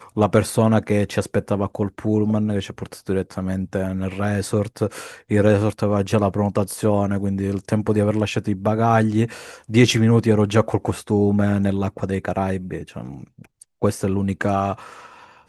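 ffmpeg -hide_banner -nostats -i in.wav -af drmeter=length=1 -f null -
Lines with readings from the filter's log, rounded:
Channel 1: DR: 13.5
Overall DR: 13.5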